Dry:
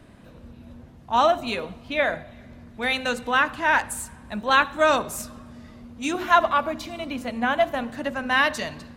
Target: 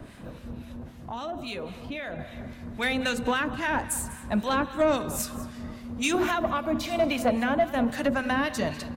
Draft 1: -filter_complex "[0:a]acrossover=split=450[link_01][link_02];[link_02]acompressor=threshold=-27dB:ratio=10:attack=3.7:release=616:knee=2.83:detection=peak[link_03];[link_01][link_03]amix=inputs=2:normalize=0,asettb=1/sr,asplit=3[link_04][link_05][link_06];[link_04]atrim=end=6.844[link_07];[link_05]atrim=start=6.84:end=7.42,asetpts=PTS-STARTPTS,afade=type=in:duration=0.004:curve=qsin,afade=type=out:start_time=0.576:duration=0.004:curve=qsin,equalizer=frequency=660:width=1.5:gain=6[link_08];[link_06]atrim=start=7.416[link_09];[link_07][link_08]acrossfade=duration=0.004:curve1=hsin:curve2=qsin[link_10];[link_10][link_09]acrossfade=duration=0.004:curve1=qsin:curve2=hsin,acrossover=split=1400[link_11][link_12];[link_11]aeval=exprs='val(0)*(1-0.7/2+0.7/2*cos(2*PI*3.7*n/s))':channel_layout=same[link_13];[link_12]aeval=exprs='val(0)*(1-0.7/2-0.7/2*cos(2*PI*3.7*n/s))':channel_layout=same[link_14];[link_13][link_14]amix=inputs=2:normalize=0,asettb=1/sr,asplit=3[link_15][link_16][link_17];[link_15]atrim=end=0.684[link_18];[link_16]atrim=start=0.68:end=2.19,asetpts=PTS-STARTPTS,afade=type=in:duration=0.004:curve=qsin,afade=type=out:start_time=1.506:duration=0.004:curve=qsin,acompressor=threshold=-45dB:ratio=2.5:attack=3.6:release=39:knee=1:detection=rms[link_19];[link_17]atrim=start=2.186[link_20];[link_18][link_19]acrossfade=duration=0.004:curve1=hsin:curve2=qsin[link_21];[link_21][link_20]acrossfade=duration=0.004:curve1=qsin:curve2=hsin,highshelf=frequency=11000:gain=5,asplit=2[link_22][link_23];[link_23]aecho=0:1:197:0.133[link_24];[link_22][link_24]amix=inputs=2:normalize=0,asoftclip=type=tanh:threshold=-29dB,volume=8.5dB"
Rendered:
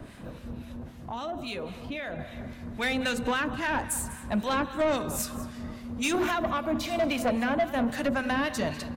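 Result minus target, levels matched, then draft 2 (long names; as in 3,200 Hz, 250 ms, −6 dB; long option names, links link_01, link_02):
soft clipping: distortion +7 dB
-filter_complex "[0:a]acrossover=split=450[link_01][link_02];[link_02]acompressor=threshold=-27dB:ratio=10:attack=3.7:release=616:knee=2.83:detection=peak[link_03];[link_01][link_03]amix=inputs=2:normalize=0,asettb=1/sr,asplit=3[link_04][link_05][link_06];[link_04]atrim=end=6.844[link_07];[link_05]atrim=start=6.84:end=7.42,asetpts=PTS-STARTPTS,afade=type=in:duration=0.004:curve=qsin,afade=type=out:start_time=0.576:duration=0.004:curve=qsin,equalizer=frequency=660:width=1.5:gain=6[link_08];[link_06]atrim=start=7.416[link_09];[link_07][link_08]acrossfade=duration=0.004:curve1=hsin:curve2=qsin[link_10];[link_10][link_09]acrossfade=duration=0.004:curve1=qsin:curve2=hsin,acrossover=split=1400[link_11][link_12];[link_11]aeval=exprs='val(0)*(1-0.7/2+0.7/2*cos(2*PI*3.7*n/s))':channel_layout=same[link_13];[link_12]aeval=exprs='val(0)*(1-0.7/2-0.7/2*cos(2*PI*3.7*n/s))':channel_layout=same[link_14];[link_13][link_14]amix=inputs=2:normalize=0,asettb=1/sr,asplit=3[link_15][link_16][link_17];[link_15]atrim=end=0.684[link_18];[link_16]atrim=start=0.68:end=2.19,asetpts=PTS-STARTPTS,afade=type=in:duration=0.004:curve=qsin,afade=type=out:start_time=1.506:duration=0.004:curve=qsin,acompressor=threshold=-45dB:ratio=2.5:attack=3.6:release=39:knee=1:detection=rms[link_19];[link_17]atrim=start=2.186[link_20];[link_18][link_19]acrossfade=duration=0.004:curve1=hsin:curve2=qsin[link_21];[link_21][link_20]acrossfade=duration=0.004:curve1=qsin:curve2=hsin,highshelf=frequency=11000:gain=5,asplit=2[link_22][link_23];[link_23]aecho=0:1:197:0.133[link_24];[link_22][link_24]amix=inputs=2:normalize=0,asoftclip=type=tanh:threshold=-23dB,volume=8.5dB"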